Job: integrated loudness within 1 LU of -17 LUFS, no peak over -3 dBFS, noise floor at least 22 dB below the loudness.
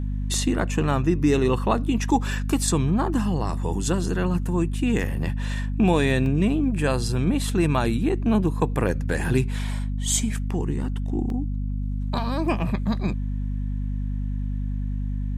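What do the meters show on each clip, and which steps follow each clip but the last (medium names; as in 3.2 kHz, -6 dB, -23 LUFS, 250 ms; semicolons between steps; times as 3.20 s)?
dropouts 3; longest dropout 1.5 ms; hum 50 Hz; highest harmonic 250 Hz; hum level -24 dBFS; loudness -24.5 LUFS; peak level -7.0 dBFS; loudness target -17.0 LUFS
-> interpolate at 0.34/6.26/11.30 s, 1.5 ms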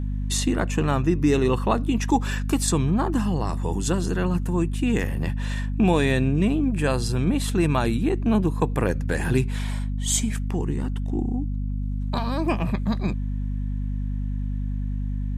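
dropouts 0; hum 50 Hz; highest harmonic 250 Hz; hum level -24 dBFS
-> hum notches 50/100/150/200/250 Hz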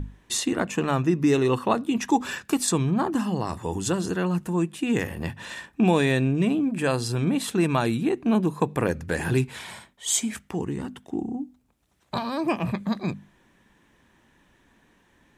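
hum not found; loudness -25.5 LUFS; peak level -8.0 dBFS; loudness target -17.0 LUFS
-> trim +8.5 dB; peak limiter -3 dBFS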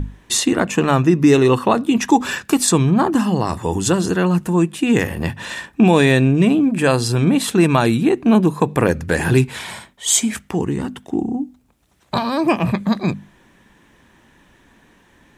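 loudness -17.0 LUFS; peak level -3.0 dBFS; noise floor -54 dBFS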